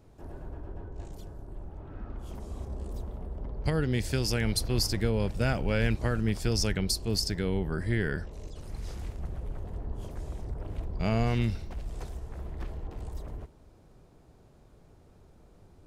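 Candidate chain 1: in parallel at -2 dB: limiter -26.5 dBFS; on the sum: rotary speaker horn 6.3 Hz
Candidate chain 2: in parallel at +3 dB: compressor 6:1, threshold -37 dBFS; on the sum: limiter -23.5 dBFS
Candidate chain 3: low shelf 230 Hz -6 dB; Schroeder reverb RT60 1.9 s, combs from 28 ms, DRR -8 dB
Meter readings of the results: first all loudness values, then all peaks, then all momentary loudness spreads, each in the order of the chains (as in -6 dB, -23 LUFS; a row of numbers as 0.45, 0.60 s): -31.5, -34.5, -24.0 LUFS; -11.5, -23.5, -8.5 dBFS; 13, 19, 19 LU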